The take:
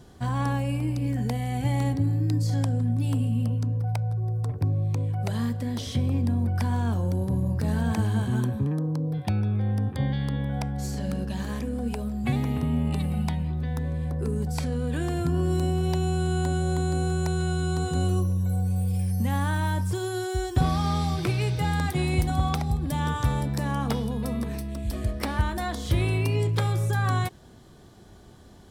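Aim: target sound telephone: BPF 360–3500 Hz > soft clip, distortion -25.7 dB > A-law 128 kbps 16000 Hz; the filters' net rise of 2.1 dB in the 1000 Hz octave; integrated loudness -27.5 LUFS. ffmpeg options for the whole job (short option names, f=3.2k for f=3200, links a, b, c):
-af "highpass=360,lowpass=3.5k,equalizer=f=1k:t=o:g=3,asoftclip=threshold=-19dB,volume=7dB" -ar 16000 -c:a pcm_alaw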